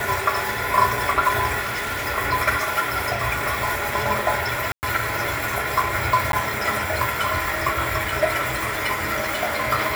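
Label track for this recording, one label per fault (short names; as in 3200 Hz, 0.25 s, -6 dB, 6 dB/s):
1.620000	2.070000	clipped -23 dBFS
4.720000	4.830000	gap 0.109 s
6.320000	6.330000	gap 12 ms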